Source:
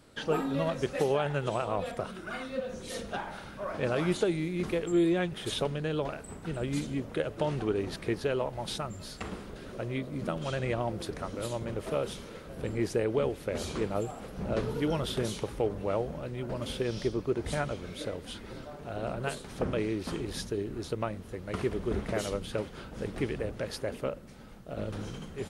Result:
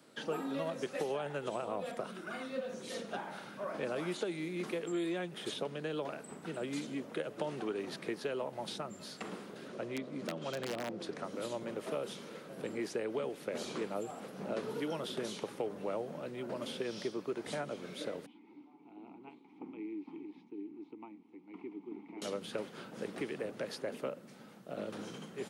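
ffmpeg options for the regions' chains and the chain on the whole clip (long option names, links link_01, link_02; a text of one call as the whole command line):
ffmpeg -i in.wav -filter_complex "[0:a]asettb=1/sr,asplit=3[link_01][link_02][link_03];[link_01]atrim=end=9.684[link_04];[link_02]atrim=start=9.68:end=11.24,asetpts=PTS-STARTPTS,afade=type=in:duration=0.004:curve=qsin,afade=type=out:start_time=1.556:duration=0.004:curve=qsin,lowpass=8800,aeval=exprs='(mod(12.6*val(0)+1,2)-1)/12.6':channel_layout=same[link_05];[link_03]atrim=start=11.236[link_06];[link_04][link_05]acrossfade=duration=0.004:curve1=hsin:curve2=qsin[link_07];[link_07][link_06]acrossfade=duration=0.004:curve1=qsin:curve2=hsin,asettb=1/sr,asplit=3[link_08][link_09][link_10];[link_08]atrim=end=18.264[link_11];[link_09]atrim=start=18.26:end=22.22,asetpts=PTS-STARTPTS,afade=type=in:duration=0.004:curve=qsin,afade=type=out:start_time=3.956:duration=0.004:curve=qsin,acrossover=split=3400[link_12][link_13];[link_13]acompressor=threshold=-57dB:ratio=4:attack=1:release=60[link_14];[link_12][link_14]amix=inputs=2:normalize=0,asplit=3[link_15][link_16][link_17];[link_15]bandpass=frequency=300:width_type=q:width=8,volume=0dB[link_18];[link_16]bandpass=frequency=870:width_type=q:width=8,volume=-6dB[link_19];[link_17]bandpass=frequency=2240:width_type=q:width=8,volume=-9dB[link_20];[link_18][link_19][link_20]amix=inputs=3:normalize=0[link_21];[link_10]atrim=start=22.216[link_22];[link_11][link_21]acrossfade=duration=0.004:curve1=hsin:curve2=qsin[link_23];[link_23][link_22]acrossfade=duration=0.004:curve1=qsin:curve2=hsin,highpass=frequency=160:width=0.5412,highpass=frequency=160:width=1.3066,acrossover=split=210|680|7300[link_24][link_25][link_26][link_27];[link_24]acompressor=threshold=-49dB:ratio=4[link_28];[link_25]acompressor=threshold=-34dB:ratio=4[link_29];[link_26]acompressor=threshold=-39dB:ratio=4[link_30];[link_27]acompressor=threshold=-56dB:ratio=4[link_31];[link_28][link_29][link_30][link_31]amix=inputs=4:normalize=0,volume=-2.5dB" out.wav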